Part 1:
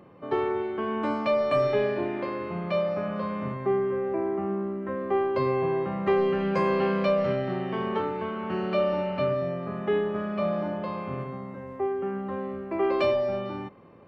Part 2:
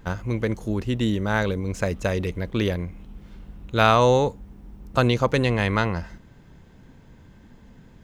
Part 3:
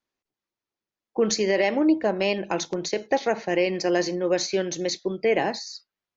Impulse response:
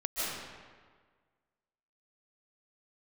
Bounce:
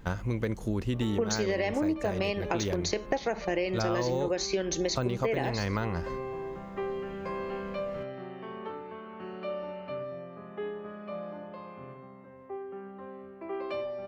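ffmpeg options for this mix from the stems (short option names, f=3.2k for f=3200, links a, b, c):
-filter_complex "[0:a]bass=f=250:g=-4,treble=f=4k:g=-2,adelay=700,volume=-10.5dB[a];[1:a]deesser=0.8,volume=-1.5dB[b];[2:a]agate=range=-16dB:threshold=-34dB:ratio=16:detection=peak,volume=3dB[c];[a][b][c]amix=inputs=3:normalize=0,acompressor=threshold=-26dB:ratio=6"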